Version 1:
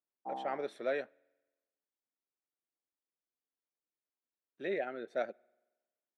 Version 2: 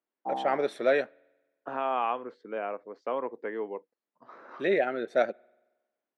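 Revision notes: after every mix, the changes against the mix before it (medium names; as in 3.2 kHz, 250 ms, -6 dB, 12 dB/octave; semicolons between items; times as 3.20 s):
first voice +10.0 dB; second voice: unmuted; background +8.0 dB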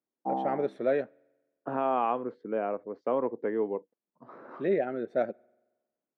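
first voice -6.0 dB; master: add tilt EQ -4 dB/octave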